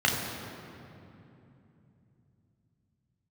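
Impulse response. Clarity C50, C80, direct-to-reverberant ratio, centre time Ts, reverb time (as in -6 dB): 2.5 dB, 4.0 dB, -1.5 dB, 89 ms, 2.9 s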